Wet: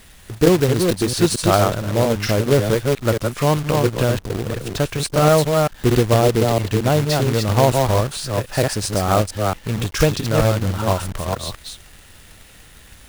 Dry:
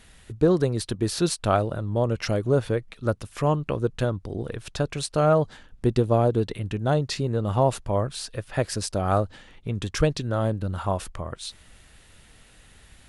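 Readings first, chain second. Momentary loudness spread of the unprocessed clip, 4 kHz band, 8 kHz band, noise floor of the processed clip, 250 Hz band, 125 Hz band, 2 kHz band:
12 LU, +9.5 dB, +9.5 dB, -45 dBFS, +6.5 dB, +7.0 dB, +9.5 dB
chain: reverse delay 0.227 s, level -3.5 dB; companded quantiser 4-bit; gain +5 dB

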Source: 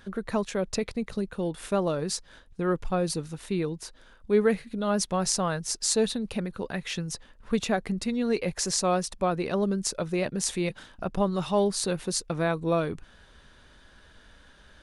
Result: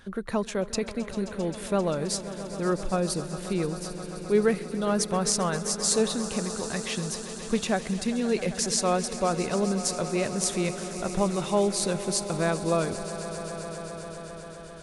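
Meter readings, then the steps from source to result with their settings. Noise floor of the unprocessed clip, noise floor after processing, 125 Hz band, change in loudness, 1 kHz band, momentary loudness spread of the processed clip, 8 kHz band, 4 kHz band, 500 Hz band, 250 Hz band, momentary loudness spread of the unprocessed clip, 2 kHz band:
-56 dBFS, -41 dBFS, +0.5 dB, +0.5 dB, +1.0 dB, 11 LU, +2.5 dB, +1.0 dB, +1.0 dB, +0.5 dB, 9 LU, +1.0 dB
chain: bell 9400 Hz +2.5 dB 0.77 oct; swelling echo 0.132 s, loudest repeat 5, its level -16.5 dB

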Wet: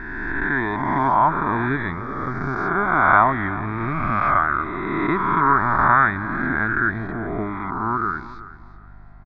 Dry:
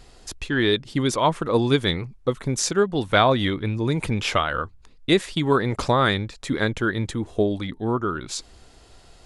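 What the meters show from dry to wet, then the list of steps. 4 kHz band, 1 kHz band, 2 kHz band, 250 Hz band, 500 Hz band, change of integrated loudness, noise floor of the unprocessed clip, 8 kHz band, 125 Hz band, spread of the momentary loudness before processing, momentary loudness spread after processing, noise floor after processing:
under -20 dB, +8.0 dB, +7.0 dB, -1.0 dB, -5.5 dB, +2.5 dB, -51 dBFS, under -35 dB, -2.0 dB, 9 LU, 12 LU, -41 dBFS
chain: spectral swells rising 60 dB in 2.18 s; inverse Chebyshev low-pass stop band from 8700 Hz, stop band 70 dB; bell 110 Hz -7 dB 2.6 oct; hum 50 Hz, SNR 27 dB; fixed phaser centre 1200 Hz, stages 4; on a send: feedback echo 0.373 s, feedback 24%, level -16 dB; on the sum: gain +3 dB

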